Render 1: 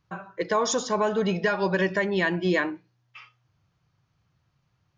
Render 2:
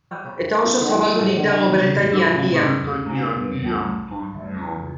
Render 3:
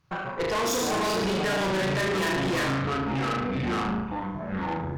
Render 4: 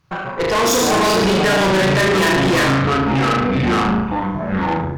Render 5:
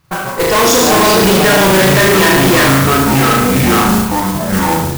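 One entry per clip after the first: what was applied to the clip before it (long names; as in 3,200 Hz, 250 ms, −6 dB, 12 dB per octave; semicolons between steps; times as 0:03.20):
delay with pitch and tempo change per echo 90 ms, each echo −6 semitones, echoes 3, each echo −6 dB; on a send: flutter between parallel walls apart 6.3 metres, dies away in 0.77 s; on the sum: level +3.5 dB
mains-hum notches 50/100/150/200/250/300 Hz; tube saturation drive 28 dB, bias 0.65; level +3.5 dB
automatic gain control gain up to 4.5 dB; level +6.5 dB
noise that follows the level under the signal 10 dB; level +5.5 dB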